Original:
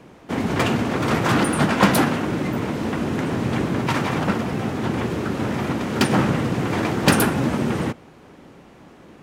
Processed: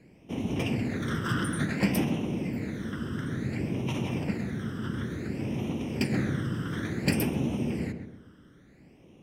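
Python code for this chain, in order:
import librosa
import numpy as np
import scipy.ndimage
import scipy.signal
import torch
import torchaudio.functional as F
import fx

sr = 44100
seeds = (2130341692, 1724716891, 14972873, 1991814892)

y = fx.phaser_stages(x, sr, stages=12, low_hz=740.0, high_hz=1500.0, hz=0.57, feedback_pct=40)
y = fx.echo_filtered(y, sr, ms=132, feedback_pct=44, hz=1400.0, wet_db=-7)
y = y * librosa.db_to_amplitude(-9.0)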